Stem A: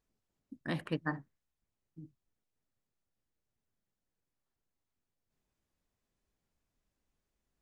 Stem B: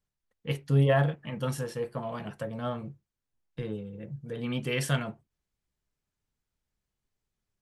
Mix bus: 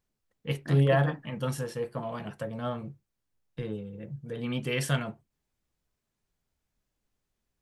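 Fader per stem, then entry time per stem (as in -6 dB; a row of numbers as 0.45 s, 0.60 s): -1.0 dB, 0.0 dB; 0.00 s, 0.00 s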